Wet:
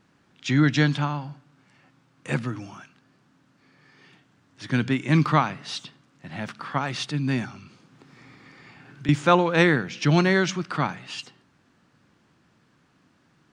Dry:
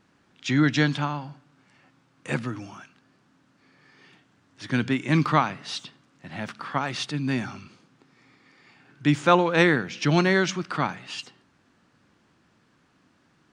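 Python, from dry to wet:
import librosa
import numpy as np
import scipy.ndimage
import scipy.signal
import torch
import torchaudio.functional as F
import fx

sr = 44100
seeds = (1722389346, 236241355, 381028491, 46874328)

y = fx.peak_eq(x, sr, hz=140.0, db=3.5, octaves=0.77)
y = fx.band_squash(y, sr, depth_pct=70, at=(7.45, 9.09))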